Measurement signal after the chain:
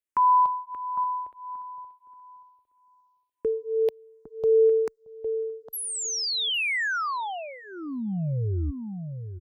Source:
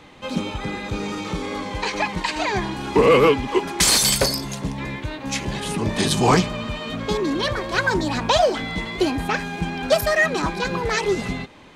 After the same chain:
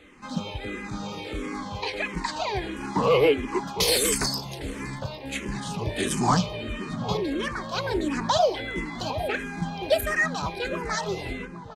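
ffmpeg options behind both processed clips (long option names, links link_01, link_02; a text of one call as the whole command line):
ffmpeg -i in.wav -filter_complex "[0:a]asplit=2[link_01][link_02];[link_02]adelay=807,lowpass=frequency=820:poles=1,volume=-8dB,asplit=2[link_03][link_04];[link_04]adelay=807,lowpass=frequency=820:poles=1,volume=0.16,asplit=2[link_05][link_06];[link_06]adelay=807,lowpass=frequency=820:poles=1,volume=0.16[link_07];[link_01][link_03][link_05][link_07]amix=inputs=4:normalize=0,asplit=2[link_08][link_09];[link_09]afreqshift=-1.5[link_10];[link_08][link_10]amix=inputs=2:normalize=1,volume=-3dB" out.wav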